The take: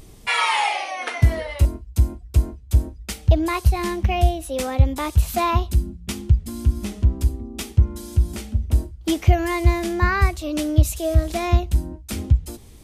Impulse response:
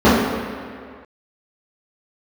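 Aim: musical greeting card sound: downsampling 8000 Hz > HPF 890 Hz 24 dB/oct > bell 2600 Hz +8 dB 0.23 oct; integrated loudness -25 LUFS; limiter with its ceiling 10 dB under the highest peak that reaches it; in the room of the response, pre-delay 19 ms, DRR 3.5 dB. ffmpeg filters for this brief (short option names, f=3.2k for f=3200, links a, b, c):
-filter_complex "[0:a]alimiter=limit=-13dB:level=0:latency=1,asplit=2[a][b];[1:a]atrim=start_sample=2205,adelay=19[c];[b][c]afir=irnorm=-1:irlink=0,volume=-33dB[d];[a][d]amix=inputs=2:normalize=0,aresample=8000,aresample=44100,highpass=f=890:w=0.5412,highpass=f=890:w=1.3066,equalizer=f=2.6k:t=o:w=0.23:g=8,volume=3dB"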